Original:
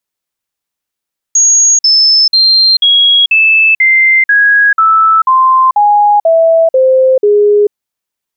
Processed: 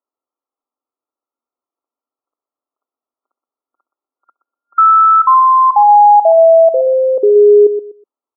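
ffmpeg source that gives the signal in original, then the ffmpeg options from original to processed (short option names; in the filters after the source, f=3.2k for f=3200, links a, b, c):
-f lavfi -i "aevalsrc='0.631*clip(min(mod(t,0.49),0.44-mod(t,0.49))/0.005,0,1)*sin(2*PI*6620*pow(2,-floor(t/0.49)/3)*mod(t,0.49))':d=6.37:s=44100"
-filter_complex "[0:a]afftfilt=real='re*between(b*sr/4096,230,1400)':imag='im*between(b*sr/4096,230,1400)':win_size=4096:overlap=0.75,adynamicequalizer=threshold=0.0708:dfrequency=530:dqfactor=4.7:tfrequency=530:tqfactor=4.7:attack=5:release=100:ratio=0.375:range=3.5:mode=cutabove:tftype=bell,asplit=2[a][b];[b]adelay=123,lowpass=f=930:p=1,volume=-9dB,asplit=2[c][d];[d]adelay=123,lowpass=f=930:p=1,volume=0.25,asplit=2[e][f];[f]adelay=123,lowpass=f=930:p=1,volume=0.25[g];[a][c][e][g]amix=inputs=4:normalize=0"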